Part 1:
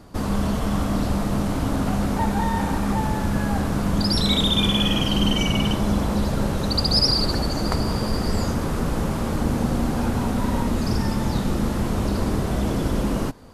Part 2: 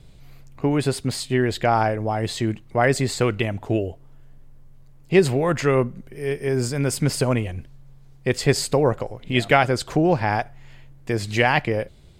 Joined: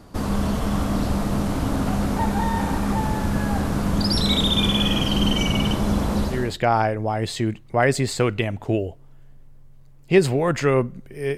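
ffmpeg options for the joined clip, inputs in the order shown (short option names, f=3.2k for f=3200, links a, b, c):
-filter_complex "[0:a]apad=whole_dur=11.37,atrim=end=11.37,atrim=end=6.59,asetpts=PTS-STARTPTS[a];[1:a]atrim=start=1.22:end=6.38,asetpts=PTS-STARTPTS[b];[a][b]acrossfade=d=0.38:c1=tri:c2=tri"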